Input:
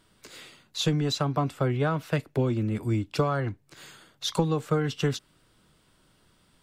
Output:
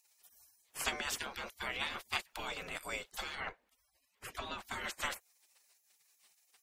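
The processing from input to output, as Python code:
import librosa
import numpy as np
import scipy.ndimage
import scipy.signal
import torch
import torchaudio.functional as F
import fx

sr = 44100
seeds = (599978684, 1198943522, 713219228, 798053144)

y = fx.spec_gate(x, sr, threshold_db=-25, keep='weak')
y = fx.bass_treble(y, sr, bass_db=2, treble_db=-11, at=(3.35, 4.65))
y = F.gain(torch.from_numpy(y), 6.5).numpy()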